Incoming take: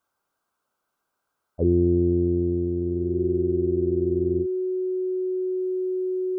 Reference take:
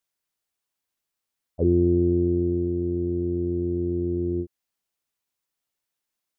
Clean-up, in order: notch 370 Hz, Q 30; expander -72 dBFS, range -21 dB; gain correction -4.5 dB, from 5.6

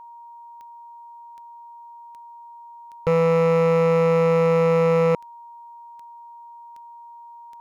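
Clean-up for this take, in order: clip repair -13.5 dBFS; de-click; notch 940 Hz, Q 30

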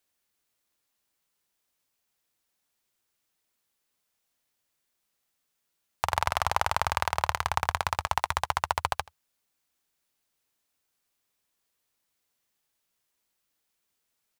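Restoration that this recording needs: inverse comb 81 ms -21.5 dB

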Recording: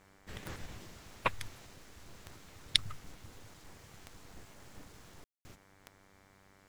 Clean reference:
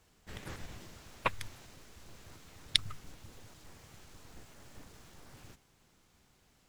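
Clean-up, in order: de-click; de-hum 97.3 Hz, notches 24; room tone fill 5.24–5.45

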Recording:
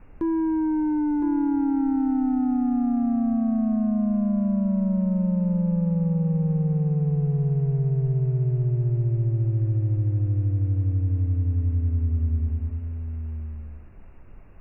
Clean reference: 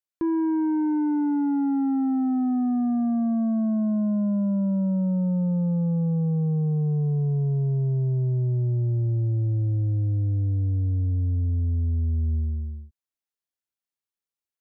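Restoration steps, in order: noise print and reduce 30 dB; inverse comb 1.012 s -7.5 dB

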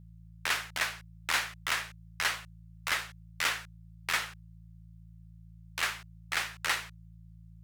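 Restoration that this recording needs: de-hum 55.6 Hz, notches 3

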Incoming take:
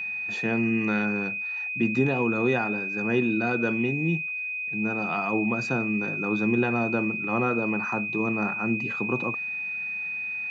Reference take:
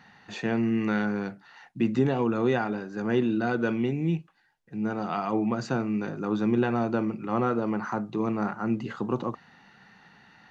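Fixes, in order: notch 2500 Hz, Q 30

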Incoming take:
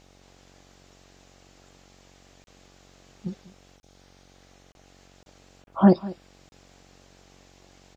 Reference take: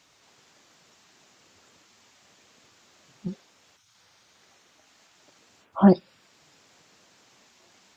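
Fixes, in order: de-hum 46.3 Hz, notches 18; interpolate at 2.44/3.8/4.72/5.23/5.64/6.49, 31 ms; inverse comb 0.197 s -19 dB

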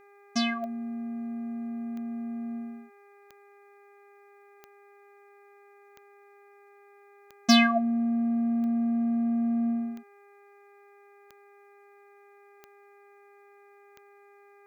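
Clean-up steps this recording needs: clip repair -10.5 dBFS; de-click; de-hum 403.9 Hz, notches 6

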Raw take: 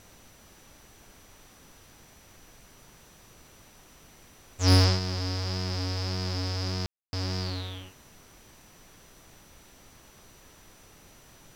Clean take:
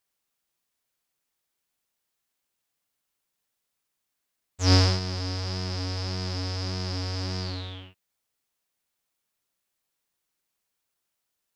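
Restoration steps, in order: clip repair -13.5 dBFS; notch 5900 Hz, Q 30; room tone fill 6.86–7.13; noise print and reduce 26 dB

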